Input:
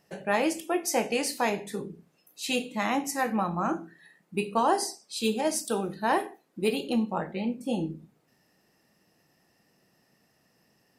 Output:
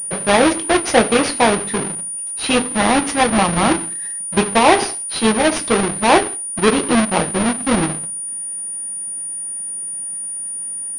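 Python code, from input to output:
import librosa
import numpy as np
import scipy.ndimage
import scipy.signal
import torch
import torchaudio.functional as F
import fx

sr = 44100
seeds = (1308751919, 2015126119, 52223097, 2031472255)

y = fx.halfwave_hold(x, sr)
y = fx.hpss(y, sr, part='percussive', gain_db=4)
y = fx.pwm(y, sr, carrier_hz=9500.0)
y = y * 10.0 ** (7.0 / 20.0)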